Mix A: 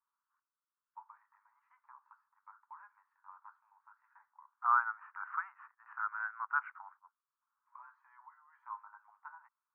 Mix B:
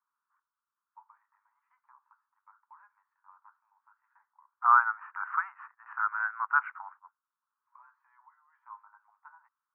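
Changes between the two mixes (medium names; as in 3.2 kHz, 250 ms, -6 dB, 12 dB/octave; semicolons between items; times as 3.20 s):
first voice -3.0 dB; second voice +7.5 dB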